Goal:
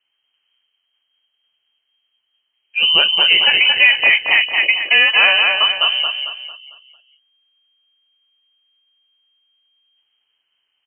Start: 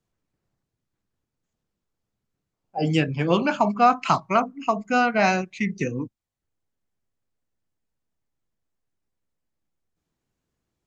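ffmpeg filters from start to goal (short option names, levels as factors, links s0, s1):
-filter_complex "[0:a]aecho=1:1:225|450|675|900|1125:0.562|0.225|0.09|0.036|0.0144,asplit=2[s0][s1];[s1]asoftclip=type=tanh:threshold=0.178,volume=0.631[s2];[s0][s2]amix=inputs=2:normalize=0,lowpass=f=2700:t=q:w=0.5098,lowpass=f=2700:t=q:w=0.6013,lowpass=f=2700:t=q:w=0.9,lowpass=f=2700:t=q:w=2.563,afreqshift=-3200,alimiter=level_in=1.88:limit=0.891:release=50:level=0:latency=1,volume=0.891"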